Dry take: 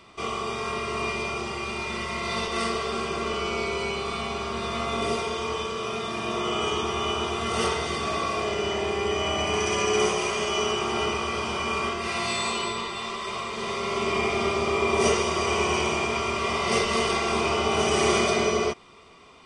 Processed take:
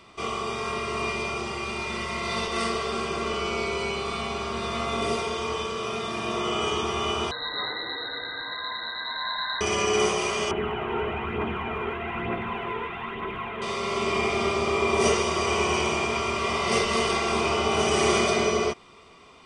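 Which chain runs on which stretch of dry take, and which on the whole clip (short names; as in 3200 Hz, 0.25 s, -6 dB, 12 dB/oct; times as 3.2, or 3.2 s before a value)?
7.31–9.61 brick-wall FIR band-stop 320–1900 Hz + inverted band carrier 4000 Hz
10.51–13.62 delta modulation 16 kbps, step -34 dBFS + notch comb 580 Hz + phaser 1.1 Hz, delay 2.3 ms, feedback 45%
whole clip: dry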